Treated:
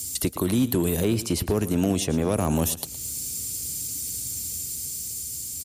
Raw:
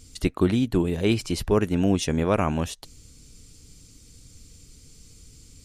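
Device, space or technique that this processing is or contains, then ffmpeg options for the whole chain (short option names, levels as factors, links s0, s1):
FM broadcast chain: -filter_complex "[0:a]asettb=1/sr,asplit=3[s0][s1][s2];[s0]atrim=end=1.004[s3];[s1]atrim=start=1:end=2.28,asetpts=PTS-STARTPTS,afade=t=in:d=0.004:c=qsin,afade=t=out:st=1.276:d=0.004:c=qsin,highshelf=f=7800:g=-10[s4];[s2]atrim=start=2.276[s5];[s3][s4]acrossfade=d=0.004:c1=hsin:c2=qsin[s6];[s6][s5]acrossfade=d=0.004:c1=qsin:c2=hsin,highpass=f=64:w=0.5412,highpass=f=64:w=1.3066,dynaudnorm=f=270:g=9:m=1.58,acrossover=split=250|1000|3200[s7][s8][s9][s10];[s7]acompressor=threshold=0.0562:ratio=4[s11];[s8]acompressor=threshold=0.0708:ratio=4[s12];[s9]acompressor=threshold=0.00398:ratio=4[s13];[s10]acompressor=threshold=0.00251:ratio=4[s14];[s11][s12][s13][s14]amix=inputs=4:normalize=0,aemphasis=mode=production:type=50fm,alimiter=limit=0.126:level=0:latency=1:release=67,asoftclip=type=hard:threshold=0.106,lowpass=f=15000:w=0.5412,lowpass=f=15000:w=1.3066,aemphasis=mode=production:type=50fm,aecho=1:1:114|228|342:0.178|0.0498|0.0139,volume=1.78"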